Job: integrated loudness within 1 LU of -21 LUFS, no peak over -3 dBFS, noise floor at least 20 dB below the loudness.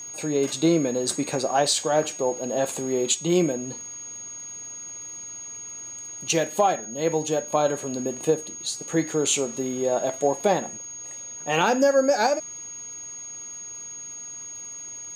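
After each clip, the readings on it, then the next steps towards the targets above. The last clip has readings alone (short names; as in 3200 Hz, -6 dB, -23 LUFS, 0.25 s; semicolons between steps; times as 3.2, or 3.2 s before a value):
ticks 38/s; steady tone 6600 Hz; tone level -35 dBFS; loudness -25.5 LUFS; peak -8.5 dBFS; loudness target -21.0 LUFS
-> de-click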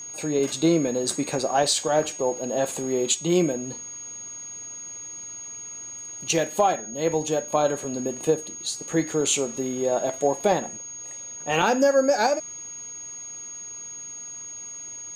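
ticks 0/s; steady tone 6600 Hz; tone level -35 dBFS
-> notch 6600 Hz, Q 30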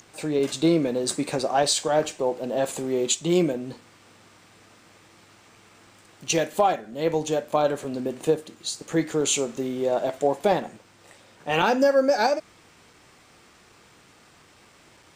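steady tone none; loudness -24.5 LUFS; peak -8.5 dBFS; loudness target -21.0 LUFS
-> gain +3.5 dB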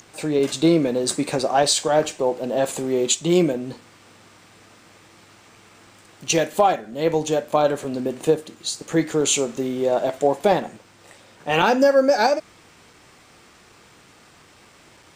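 loudness -21.0 LUFS; peak -5.0 dBFS; noise floor -52 dBFS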